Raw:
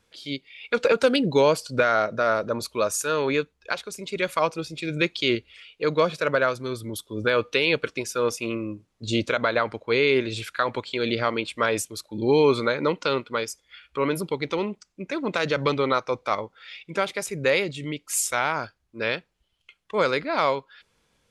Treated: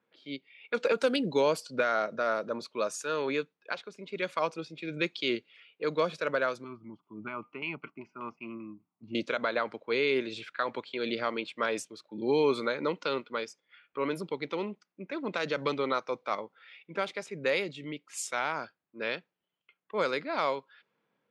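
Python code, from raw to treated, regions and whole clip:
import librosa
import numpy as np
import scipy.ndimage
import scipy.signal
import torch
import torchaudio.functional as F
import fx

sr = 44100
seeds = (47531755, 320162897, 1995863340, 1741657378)

y = fx.chain(x, sr, fx.filter_lfo_lowpass(shape='saw_down', hz=5.1, low_hz=830.0, high_hz=3100.0, q=0.76),
    fx.fixed_phaser(hz=2500.0, stages=8), at=(6.64, 9.15))
y = scipy.signal.sosfilt(scipy.signal.butter(4, 160.0, 'highpass', fs=sr, output='sos'), y)
y = fx.env_lowpass(y, sr, base_hz=1900.0, full_db=-17.0)
y = y * librosa.db_to_amplitude(-7.0)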